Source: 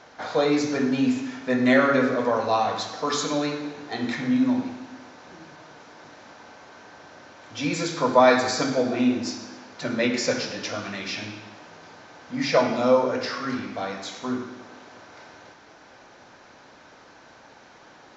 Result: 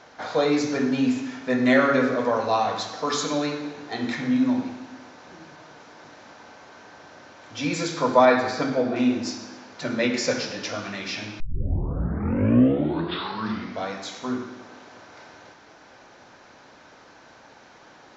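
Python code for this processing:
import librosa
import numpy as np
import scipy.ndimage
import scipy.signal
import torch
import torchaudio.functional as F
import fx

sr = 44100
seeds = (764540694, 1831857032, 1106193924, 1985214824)

y = fx.bessel_lowpass(x, sr, hz=2900.0, order=2, at=(8.25, 8.96))
y = fx.edit(y, sr, fx.tape_start(start_s=11.4, length_s=2.48), tone=tone)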